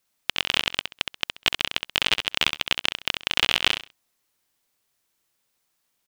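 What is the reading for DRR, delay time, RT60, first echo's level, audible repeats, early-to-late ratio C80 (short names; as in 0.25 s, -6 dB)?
none, 66 ms, none, -7.0 dB, 3, none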